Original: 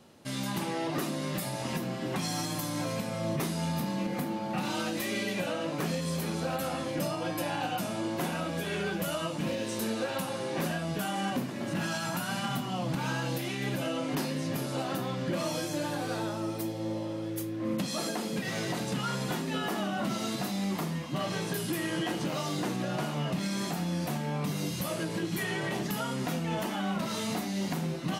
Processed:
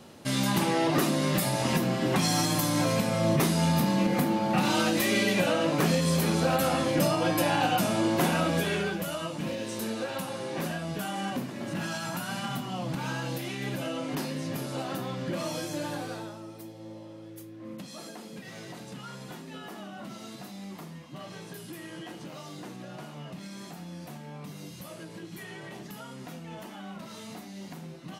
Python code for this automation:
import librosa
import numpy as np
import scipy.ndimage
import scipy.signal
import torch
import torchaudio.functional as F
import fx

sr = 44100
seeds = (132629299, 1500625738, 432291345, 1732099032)

y = fx.gain(x, sr, db=fx.line((8.56, 7.0), (9.05, -1.0), (15.96, -1.0), (16.45, -10.0)))